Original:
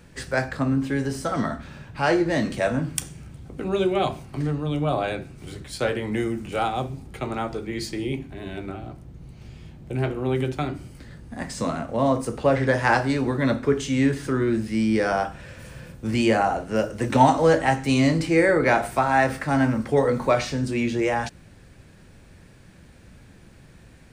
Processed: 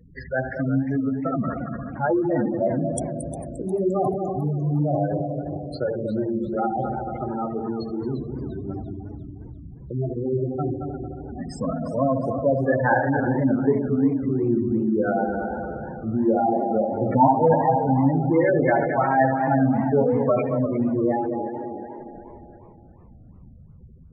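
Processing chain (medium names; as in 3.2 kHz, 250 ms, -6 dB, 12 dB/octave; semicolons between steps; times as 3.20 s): multi-head delay 75 ms, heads first and third, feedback 72%, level -8 dB; spectral gate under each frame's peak -10 dB strong; modulated delay 351 ms, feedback 44%, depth 159 cents, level -12.5 dB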